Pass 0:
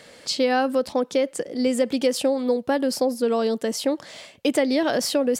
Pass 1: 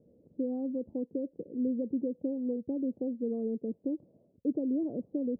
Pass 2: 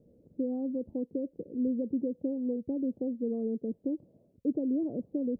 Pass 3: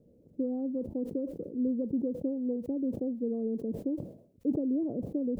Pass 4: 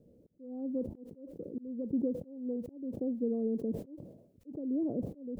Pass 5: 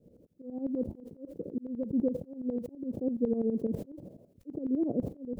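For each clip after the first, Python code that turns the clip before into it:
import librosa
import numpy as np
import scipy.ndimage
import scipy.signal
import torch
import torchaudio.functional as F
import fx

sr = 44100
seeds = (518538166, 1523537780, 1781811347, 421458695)

y1 = scipy.signal.sosfilt(scipy.signal.cheby2(4, 70, 1800.0, 'lowpass', fs=sr, output='sos'), x)
y1 = F.gain(torch.from_numpy(y1), -6.5).numpy()
y2 = fx.low_shelf(y1, sr, hz=94.0, db=8.0)
y3 = fx.sustainer(y2, sr, db_per_s=100.0)
y4 = fx.auto_swell(y3, sr, attack_ms=414.0)
y5 = fx.tremolo_shape(y4, sr, shape='saw_up', hz=12.0, depth_pct=80)
y5 = F.gain(torch.from_numpy(y5), 6.5).numpy()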